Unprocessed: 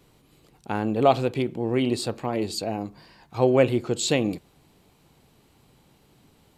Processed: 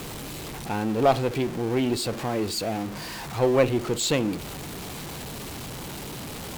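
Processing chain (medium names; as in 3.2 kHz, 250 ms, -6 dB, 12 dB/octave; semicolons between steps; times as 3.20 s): jump at every zero crossing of -28.5 dBFS; Chebyshev shaper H 4 -19 dB, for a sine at -5 dBFS; trim -2 dB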